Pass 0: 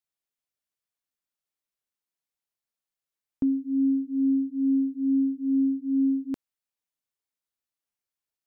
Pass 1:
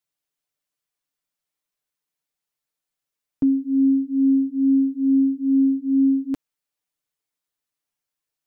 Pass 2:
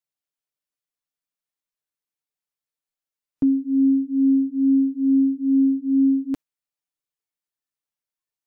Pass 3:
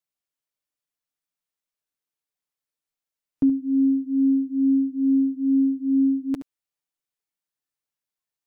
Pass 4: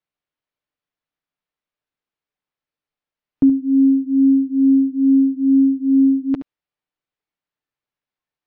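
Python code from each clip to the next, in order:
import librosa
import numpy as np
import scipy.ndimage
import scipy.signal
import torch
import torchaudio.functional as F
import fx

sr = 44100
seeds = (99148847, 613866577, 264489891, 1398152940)

y1 = x + 0.65 * np.pad(x, (int(6.7 * sr / 1000.0), 0))[:len(x)]
y1 = y1 * librosa.db_to_amplitude(3.0)
y2 = fx.noise_reduce_blind(y1, sr, reduce_db=7)
y3 = y2 + 10.0 ** (-11.5 / 20.0) * np.pad(y2, (int(72 * sr / 1000.0), 0))[:len(y2)]
y4 = fx.air_absorb(y3, sr, metres=240.0)
y4 = y4 * librosa.db_to_amplitude(6.5)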